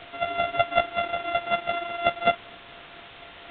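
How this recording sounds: a buzz of ramps at a fixed pitch in blocks of 64 samples; tremolo triangle 4.1 Hz, depth 70%; a quantiser's noise floor 8-bit, dither triangular; µ-law

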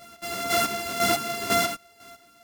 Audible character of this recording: a buzz of ramps at a fixed pitch in blocks of 64 samples; chopped level 2 Hz, depth 65%, duty 30%; a shimmering, thickened sound

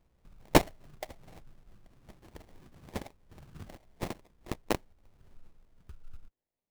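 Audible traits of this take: aliases and images of a low sample rate 1.4 kHz, jitter 20%

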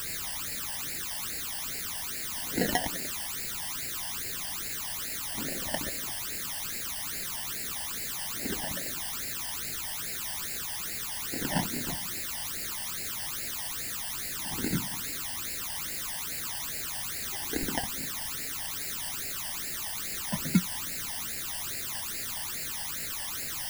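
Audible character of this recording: aliases and images of a low sample rate 1.2 kHz, jitter 0%; random-step tremolo; a quantiser's noise floor 6-bit, dither triangular; phasing stages 12, 2.4 Hz, lowest notch 400–1100 Hz

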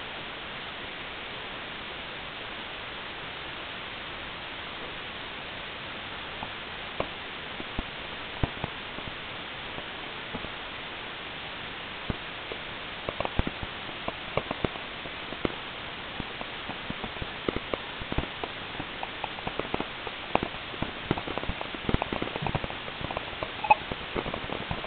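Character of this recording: aliases and images of a low sample rate 1.7 kHz, jitter 0%; tremolo saw down 0.87 Hz, depth 65%; a quantiser's noise floor 6-bit, dither triangular; A-law

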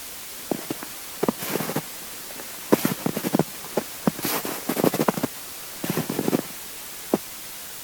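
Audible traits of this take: a quantiser's noise floor 6-bit, dither triangular; AAC

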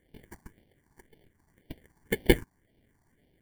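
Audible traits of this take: aliases and images of a low sample rate 1.3 kHz, jitter 0%; phasing stages 4, 1.9 Hz, lowest notch 510–1200 Hz

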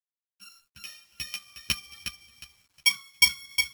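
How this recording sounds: a buzz of ramps at a fixed pitch in blocks of 8 samples; tremolo triangle 0.54 Hz, depth 50%; a quantiser's noise floor 12-bit, dither none; a shimmering, thickened sound

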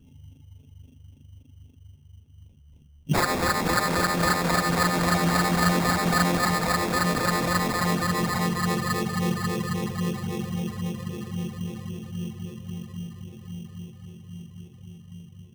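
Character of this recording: phasing stages 12, 3.7 Hz, lowest notch 250–2400 Hz; aliases and images of a low sample rate 3 kHz, jitter 0%

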